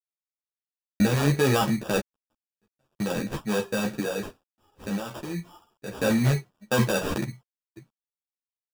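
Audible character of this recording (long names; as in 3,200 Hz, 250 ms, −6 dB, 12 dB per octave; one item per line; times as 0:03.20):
aliases and images of a low sample rate 2,100 Hz, jitter 0%
sample-and-hold tremolo 1 Hz, depth 100%
a quantiser's noise floor 12 bits, dither none
a shimmering, thickened sound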